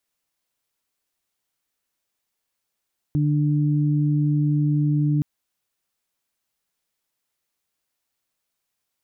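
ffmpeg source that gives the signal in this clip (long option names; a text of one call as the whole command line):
ffmpeg -f lavfi -i "aevalsrc='0.126*sin(2*PI*148*t)+0.0631*sin(2*PI*296*t)':duration=2.07:sample_rate=44100" out.wav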